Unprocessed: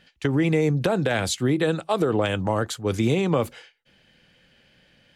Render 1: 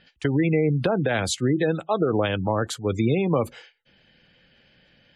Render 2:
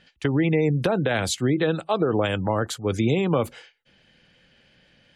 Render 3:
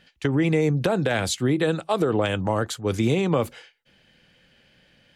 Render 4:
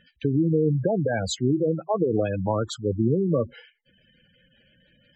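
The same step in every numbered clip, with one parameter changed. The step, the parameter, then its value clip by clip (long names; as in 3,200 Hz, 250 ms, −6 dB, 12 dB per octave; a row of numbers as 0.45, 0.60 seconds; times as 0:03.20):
gate on every frequency bin, under each frame's peak: −25, −35, −60, −10 decibels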